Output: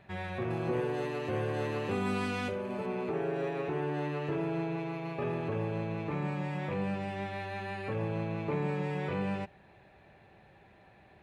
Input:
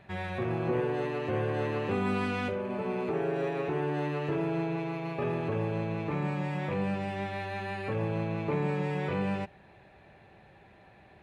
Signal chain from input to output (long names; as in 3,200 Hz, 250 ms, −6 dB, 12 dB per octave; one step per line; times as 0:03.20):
0:00.50–0:02.86: bass and treble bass 0 dB, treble +8 dB
level −2.5 dB